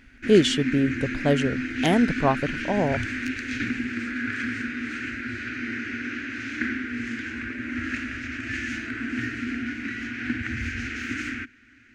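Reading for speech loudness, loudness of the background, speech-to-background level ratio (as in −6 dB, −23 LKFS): −24.0 LKFS, −30.0 LKFS, 6.0 dB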